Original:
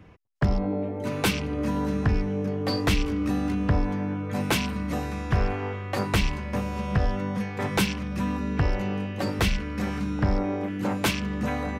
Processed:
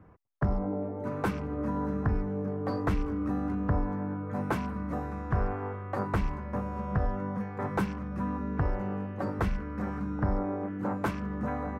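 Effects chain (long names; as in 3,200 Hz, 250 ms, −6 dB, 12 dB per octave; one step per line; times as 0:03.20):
high shelf with overshoot 2,000 Hz −14 dB, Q 1.5
level −5 dB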